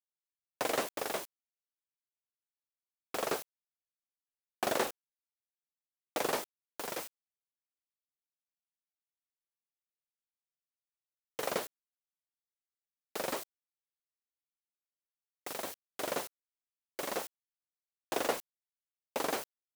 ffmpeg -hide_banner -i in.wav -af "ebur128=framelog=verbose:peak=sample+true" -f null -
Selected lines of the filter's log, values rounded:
Integrated loudness:
  I:         -37.3 LUFS
  Threshold: -47.6 LUFS
Loudness range:
  LRA:         7.0 LU
  Threshold: -61.7 LUFS
  LRA low:   -46.0 LUFS
  LRA high:  -39.0 LUFS
Sample peak:
  Peak:      -16.5 dBFS
True peak:
  Peak:      -16.5 dBFS